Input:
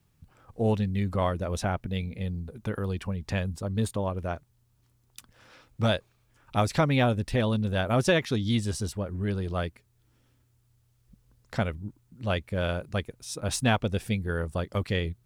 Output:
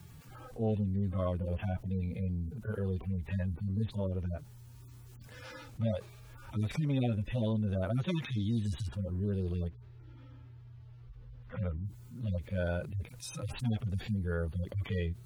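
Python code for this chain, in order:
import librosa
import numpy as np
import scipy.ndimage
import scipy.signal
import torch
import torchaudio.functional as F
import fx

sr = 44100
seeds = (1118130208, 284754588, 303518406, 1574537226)

y = fx.hpss_only(x, sr, part='harmonic')
y = fx.air_absorb(y, sr, metres=310.0, at=(9.67, 11.84), fade=0.02)
y = fx.env_flatten(y, sr, amount_pct=50)
y = y * librosa.db_to_amplitude(-6.5)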